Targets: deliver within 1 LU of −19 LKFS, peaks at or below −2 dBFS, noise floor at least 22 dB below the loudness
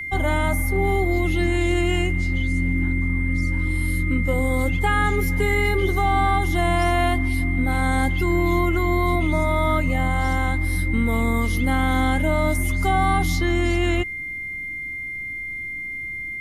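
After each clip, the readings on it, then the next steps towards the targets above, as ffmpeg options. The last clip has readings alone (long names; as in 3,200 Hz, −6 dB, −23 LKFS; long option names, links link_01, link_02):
interfering tone 2,100 Hz; level of the tone −28 dBFS; integrated loudness −22.0 LKFS; sample peak −8.0 dBFS; target loudness −19.0 LKFS
→ -af "bandreject=frequency=2100:width=30"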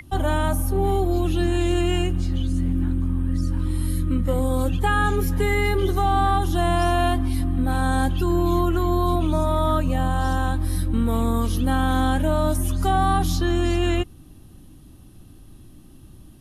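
interfering tone none found; integrated loudness −22.5 LKFS; sample peak −8.5 dBFS; target loudness −19.0 LKFS
→ -af "volume=3.5dB"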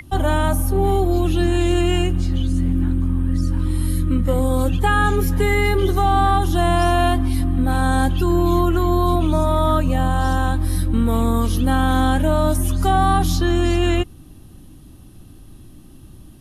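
integrated loudness −19.0 LKFS; sample peak −5.0 dBFS; background noise floor −43 dBFS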